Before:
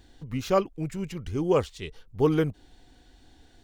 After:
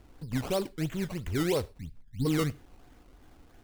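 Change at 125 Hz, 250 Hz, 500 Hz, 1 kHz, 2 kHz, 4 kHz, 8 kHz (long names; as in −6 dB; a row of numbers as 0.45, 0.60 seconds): −1.5, −2.5, −7.0, −8.0, +0.5, +1.5, +3.5 decibels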